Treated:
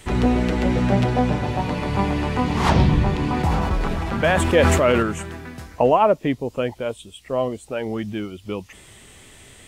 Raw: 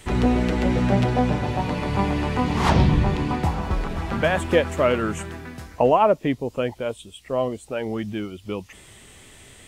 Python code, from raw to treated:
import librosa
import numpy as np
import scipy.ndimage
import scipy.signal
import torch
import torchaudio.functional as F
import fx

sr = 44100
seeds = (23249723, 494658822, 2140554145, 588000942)

y = fx.sustainer(x, sr, db_per_s=22.0, at=(3.19, 5.03))
y = y * librosa.db_to_amplitude(1.0)